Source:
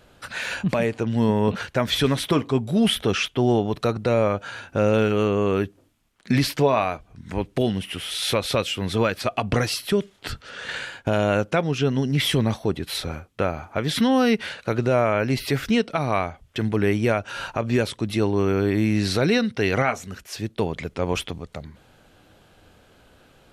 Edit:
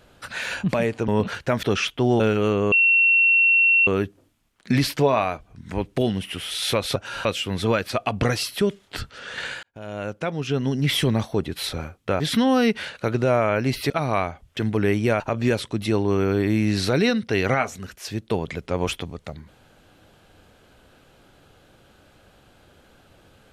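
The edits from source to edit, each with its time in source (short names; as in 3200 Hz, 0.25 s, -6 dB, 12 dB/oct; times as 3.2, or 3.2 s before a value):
1.08–1.36 cut
1.91–3.01 cut
3.58–4.95 cut
5.47 add tone 2720 Hz -13.5 dBFS 1.15 s
10.94–12.12 fade in
13.51–13.84 cut
15.54–15.89 cut
17.19–17.48 move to 8.56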